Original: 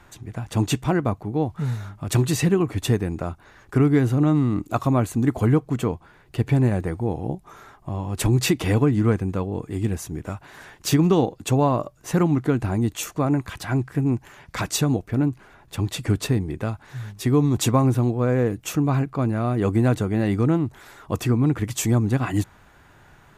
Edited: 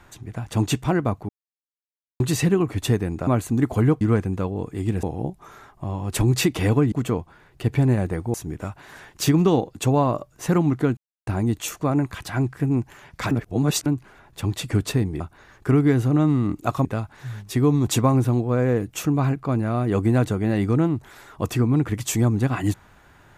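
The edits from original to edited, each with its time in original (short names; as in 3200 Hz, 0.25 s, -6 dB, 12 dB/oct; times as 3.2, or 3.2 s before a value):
1.29–2.2 mute
3.27–4.92 move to 16.55
5.66–7.08 swap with 8.97–9.99
12.62 insert silence 0.30 s
14.66–15.21 reverse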